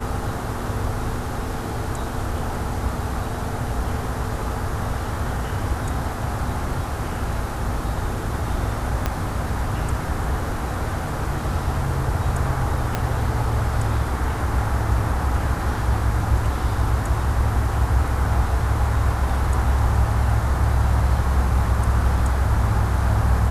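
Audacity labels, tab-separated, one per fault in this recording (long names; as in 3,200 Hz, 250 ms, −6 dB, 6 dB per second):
9.060000	9.060000	click −8 dBFS
12.950000	12.950000	click −8 dBFS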